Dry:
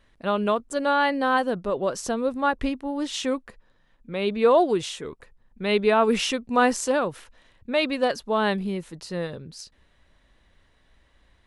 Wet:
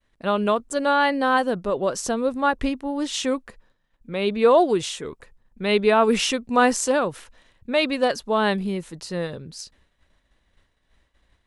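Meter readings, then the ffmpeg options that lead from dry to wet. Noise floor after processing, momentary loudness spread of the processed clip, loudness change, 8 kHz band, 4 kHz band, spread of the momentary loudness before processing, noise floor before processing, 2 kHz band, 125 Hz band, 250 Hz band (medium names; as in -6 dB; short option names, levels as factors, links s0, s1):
-69 dBFS, 13 LU, +2.0 dB, +4.5 dB, +2.5 dB, 13 LU, -62 dBFS, +2.0 dB, +2.0 dB, +2.0 dB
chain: -af "agate=range=0.0224:threshold=0.00224:ratio=3:detection=peak,equalizer=f=7700:t=o:w=1.1:g=3,volume=1.26"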